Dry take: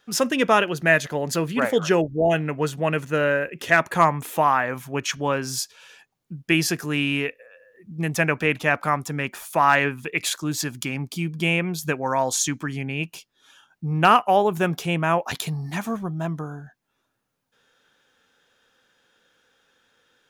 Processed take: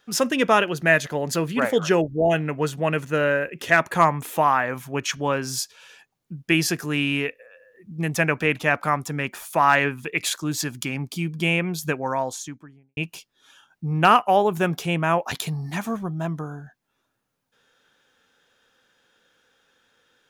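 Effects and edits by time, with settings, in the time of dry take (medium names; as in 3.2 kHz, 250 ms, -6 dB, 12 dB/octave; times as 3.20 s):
11.82–12.97 s: studio fade out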